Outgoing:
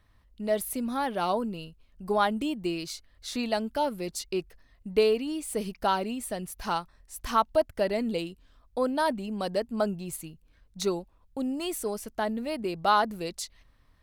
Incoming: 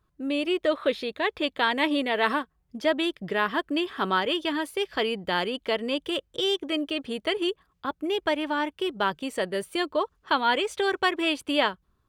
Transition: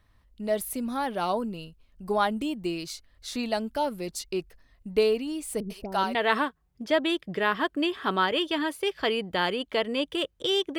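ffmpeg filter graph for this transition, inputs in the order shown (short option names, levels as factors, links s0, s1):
-filter_complex "[0:a]asettb=1/sr,asplit=3[s0][s1][s2];[s0]atrim=end=5.604[s3];[s1]atrim=start=5.6:end=6.15,asetpts=PTS-STARTPTS,afade=t=in:d=0.004:c=qsin,afade=t=out:st=0.546:d=0.004:c=qsin,acrossover=split=500[s4][s5];[s5]adelay=100[s6];[s4][s6]amix=inputs=2:normalize=0,atrim=end_sample=24255[s7];[s2]atrim=start=6.146[s8];[s3][s7]acrossfade=d=0.004:c1=hsin:c2=qsin[s9];[s9][s8]acrossfade=d=0.004:c1=qsin:c2=hsin,apad=whole_dur=10.78,atrim=end=10.78,atrim=end=6.152[s10];[1:a]atrim=start=2.088:end=6.72[s11];[s10][s11]acrossfade=d=0.004:c1=hsin:c2=hsin"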